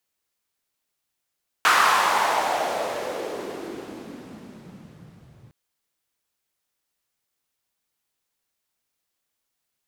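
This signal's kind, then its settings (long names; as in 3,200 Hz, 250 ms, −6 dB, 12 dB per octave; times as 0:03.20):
filter sweep on noise white, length 3.86 s bandpass, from 1,300 Hz, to 110 Hz, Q 2.8, exponential, gain ramp −25 dB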